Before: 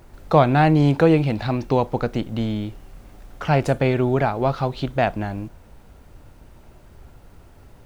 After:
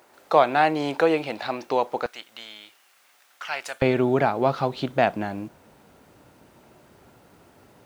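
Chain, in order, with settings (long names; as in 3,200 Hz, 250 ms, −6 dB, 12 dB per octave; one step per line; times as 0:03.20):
high-pass filter 480 Hz 12 dB per octave, from 0:02.06 1,500 Hz, from 0:03.82 180 Hz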